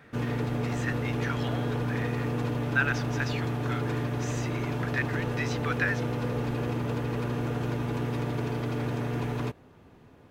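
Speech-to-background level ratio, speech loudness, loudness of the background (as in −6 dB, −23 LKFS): −3.5 dB, −34.5 LKFS, −31.0 LKFS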